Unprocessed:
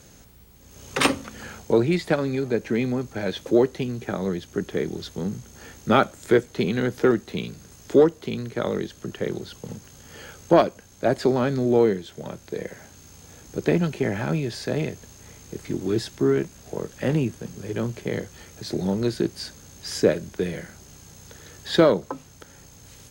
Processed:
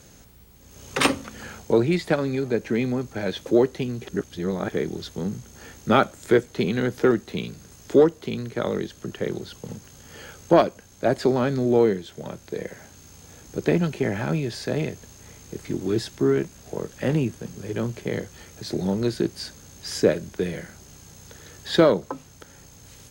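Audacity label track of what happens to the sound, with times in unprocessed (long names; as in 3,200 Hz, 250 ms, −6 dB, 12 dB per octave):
4.070000	4.700000	reverse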